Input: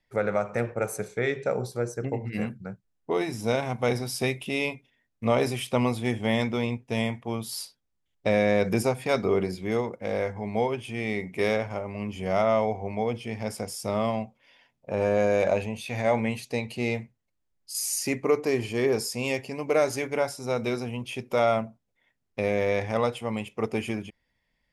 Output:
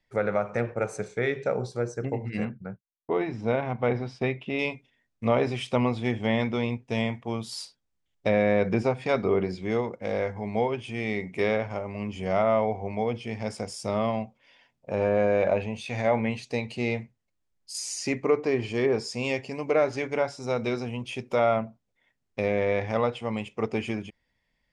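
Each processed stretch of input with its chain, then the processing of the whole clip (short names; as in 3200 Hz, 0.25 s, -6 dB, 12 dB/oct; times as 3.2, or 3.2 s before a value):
2.45–4.59 LPF 2500 Hz + expander -44 dBFS
whole clip: treble ducked by the level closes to 2800 Hz, closed at -19.5 dBFS; LPF 9200 Hz 24 dB/oct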